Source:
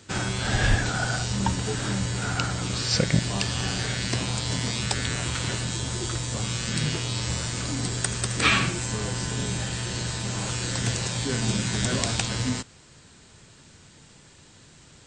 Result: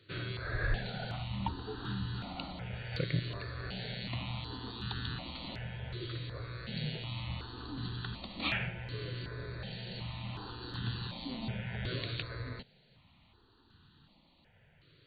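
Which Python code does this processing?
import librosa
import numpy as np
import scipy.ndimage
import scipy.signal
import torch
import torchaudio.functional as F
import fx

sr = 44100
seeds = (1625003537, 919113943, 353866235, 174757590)

y = fx.brickwall_lowpass(x, sr, high_hz=4600.0)
y = fx.phaser_held(y, sr, hz=2.7, low_hz=220.0, high_hz=2200.0)
y = y * librosa.db_to_amplitude(-8.5)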